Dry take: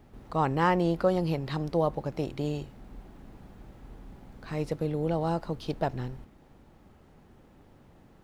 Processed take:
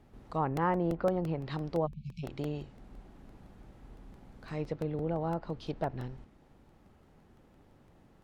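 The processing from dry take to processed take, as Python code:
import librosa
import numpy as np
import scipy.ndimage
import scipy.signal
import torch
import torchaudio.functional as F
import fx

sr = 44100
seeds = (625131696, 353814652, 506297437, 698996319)

y = fx.env_lowpass_down(x, sr, base_hz=1600.0, full_db=-23.0)
y = fx.spec_erase(y, sr, start_s=1.86, length_s=0.38, low_hz=230.0, high_hz=2200.0)
y = fx.buffer_crackle(y, sr, first_s=0.57, period_s=0.17, block=64, kind='repeat')
y = F.gain(torch.from_numpy(y), -4.5).numpy()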